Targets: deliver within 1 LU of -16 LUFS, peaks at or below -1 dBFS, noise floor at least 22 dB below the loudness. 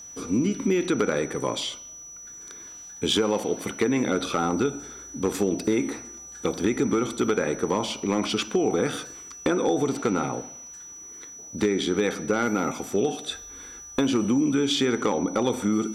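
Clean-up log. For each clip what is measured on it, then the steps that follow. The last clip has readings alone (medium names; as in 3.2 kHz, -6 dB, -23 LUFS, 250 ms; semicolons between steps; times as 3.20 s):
clipped samples 0.3%; clipping level -14.0 dBFS; steady tone 5.9 kHz; tone level -40 dBFS; loudness -25.5 LUFS; peak level -14.0 dBFS; loudness target -16.0 LUFS
-> clip repair -14 dBFS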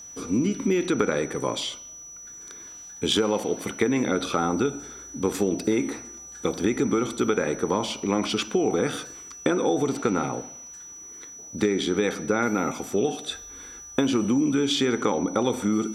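clipped samples 0.0%; steady tone 5.9 kHz; tone level -40 dBFS
-> band-stop 5.9 kHz, Q 30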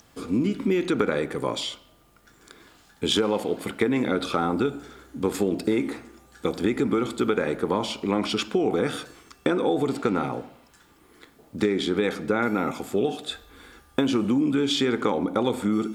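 steady tone not found; loudness -25.5 LUFS; peak level -7.0 dBFS; loudness target -16.0 LUFS
-> trim +9.5 dB; peak limiter -1 dBFS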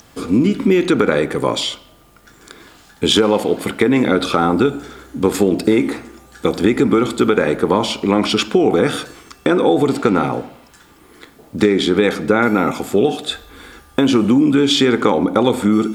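loudness -16.0 LUFS; peak level -1.0 dBFS; noise floor -48 dBFS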